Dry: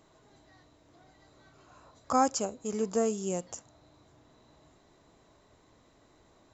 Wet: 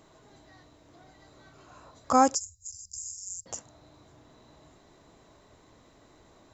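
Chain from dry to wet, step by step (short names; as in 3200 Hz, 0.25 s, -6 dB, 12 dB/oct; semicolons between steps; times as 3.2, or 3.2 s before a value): 2.35–3.46 Chebyshev band-stop 100–5100 Hz, order 5; gain +4.5 dB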